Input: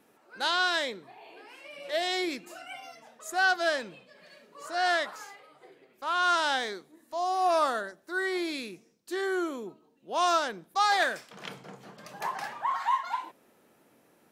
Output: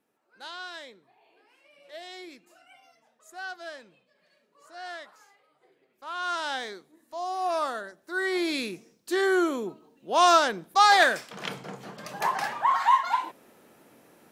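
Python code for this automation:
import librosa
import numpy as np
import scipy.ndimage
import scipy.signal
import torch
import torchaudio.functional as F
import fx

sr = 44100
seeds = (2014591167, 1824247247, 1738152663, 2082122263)

y = fx.gain(x, sr, db=fx.line((5.3, -13.0), (6.61, -3.0), (7.81, -3.0), (8.63, 6.5)))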